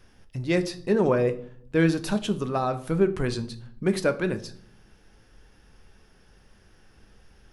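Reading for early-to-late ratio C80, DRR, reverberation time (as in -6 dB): 19.0 dB, 9.0 dB, 0.60 s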